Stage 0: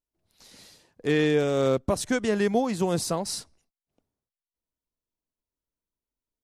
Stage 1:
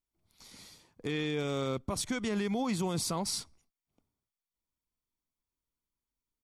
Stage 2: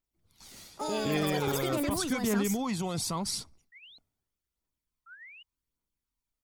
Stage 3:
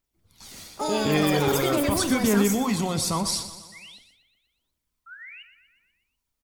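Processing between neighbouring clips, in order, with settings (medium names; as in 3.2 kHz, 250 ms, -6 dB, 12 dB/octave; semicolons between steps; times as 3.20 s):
comb 0.9 ms, depth 38%; dynamic bell 3.2 kHz, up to +4 dB, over -42 dBFS, Q 1.1; peak limiter -22 dBFS, peak gain reduction 10.5 dB; trim -2 dB
painted sound rise, 5.06–5.43 s, 1.3–3 kHz -51 dBFS; phaser 0.86 Hz, delay 1.6 ms, feedback 39%; ever faster or slower copies 141 ms, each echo +6 st, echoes 3
feedback delay 122 ms, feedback 58%, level -13 dB; on a send at -10.5 dB: reverberation, pre-delay 3 ms; on the sum: trim +6.5 dB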